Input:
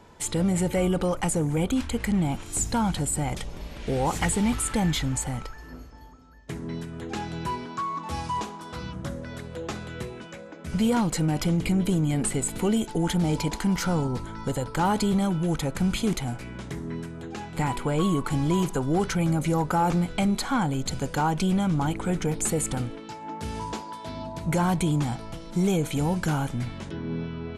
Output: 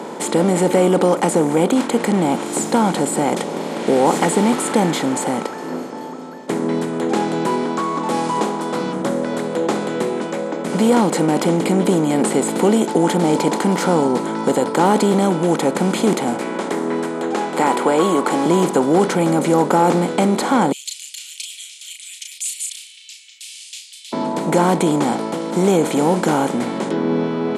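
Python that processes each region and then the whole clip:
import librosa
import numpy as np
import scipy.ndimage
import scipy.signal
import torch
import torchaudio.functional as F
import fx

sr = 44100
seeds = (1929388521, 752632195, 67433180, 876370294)

y = fx.chain(x, sr, fx.highpass(hz=310.0, slope=12),
    fx.peak_eq(hz=1300.0, db=4.5, octaves=1.9), at=(16.41, 18.46))
y = fx.chain(y, sr, fx.steep_highpass(hz=2600.0, slope=72),
    fx.doubler(ms=35.0, db=-6.0), at=(20.72, 24.13))
y = fx.bin_compress(y, sr, power=0.6)
y = scipy.signal.sosfilt(scipy.signal.butter(4, 180.0, 'highpass', fs=sr, output='sos'), y)
y = fx.peak_eq(y, sr, hz=440.0, db=9.5, octaves=2.7)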